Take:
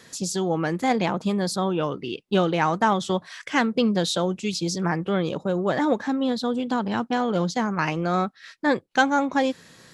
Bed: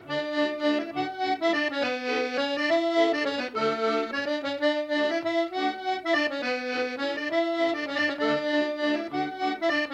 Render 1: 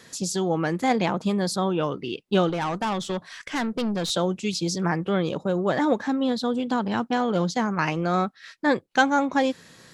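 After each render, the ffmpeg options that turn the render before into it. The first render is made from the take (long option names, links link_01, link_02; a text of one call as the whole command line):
ffmpeg -i in.wav -filter_complex "[0:a]asettb=1/sr,asplit=3[link_01][link_02][link_03];[link_01]atrim=end=2.494[link_04];[link_02]atrim=start=2.49:end=4.1,asetpts=PTS-STARTPTS,afade=type=in:duration=0.004:curve=qsin,afade=type=out:start_time=1.606:duration=0.004:curve=qsin,aeval=exprs='(tanh(12.6*val(0)+0.3)-tanh(0.3))/12.6':channel_layout=same[link_05];[link_03]atrim=start=4.096[link_06];[link_04][link_05]acrossfade=duration=0.004:curve1=hsin:curve2=qsin[link_07];[link_07][link_06]acrossfade=duration=0.004:curve1=qsin:curve2=hsin" out.wav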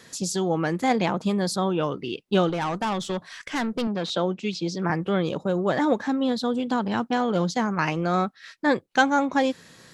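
ffmpeg -i in.wav -filter_complex "[0:a]asettb=1/sr,asplit=3[link_01][link_02][link_03];[link_01]atrim=end=3.874[link_04];[link_02]atrim=start=3.87:end=4.9,asetpts=PTS-STARTPTS,afade=type=in:duration=0.004:curve=qsin,afade=type=out:start_time=1.026:duration=0.004:curve=qsin,highpass=160,lowpass=4000[link_05];[link_03]atrim=start=4.896[link_06];[link_04][link_05]acrossfade=duration=0.004:curve1=hsin:curve2=qsin[link_07];[link_07][link_06]acrossfade=duration=0.004:curve1=qsin:curve2=hsin" out.wav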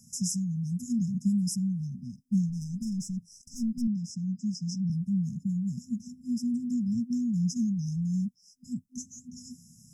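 ffmpeg -i in.wav -af "afftfilt=real='re*(1-between(b*sr/4096,250,5000))':imag='im*(1-between(b*sr/4096,250,5000))':win_size=4096:overlap=0.75,equalizer=frequency=1600:width=0.77:gain=-11.5" out.wav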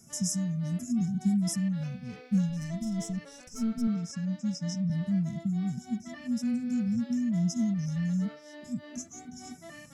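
ffmpeg -i in.wav -i bed.wav -filter_complex "[1:a]volume=-22.5dB[link_01];[0:a][link_01]amix=inputs=2:normalize=0" out.wav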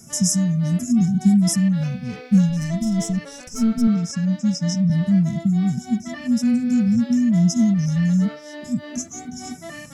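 ffmpeg -i in.wav -af "volume=11dB" out.wav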